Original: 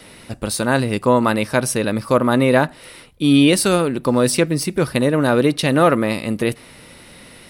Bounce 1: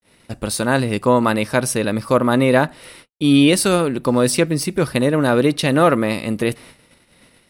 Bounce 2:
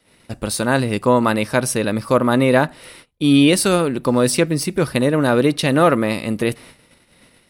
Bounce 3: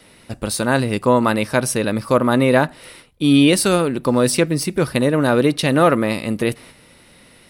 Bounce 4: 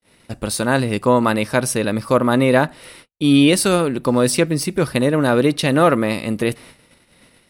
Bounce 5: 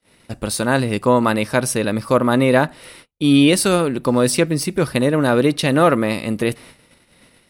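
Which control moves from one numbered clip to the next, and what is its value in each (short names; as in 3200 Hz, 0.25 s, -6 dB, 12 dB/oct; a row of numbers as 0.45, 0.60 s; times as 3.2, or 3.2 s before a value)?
gate, range: -58, -19, -6, -46, -33 dB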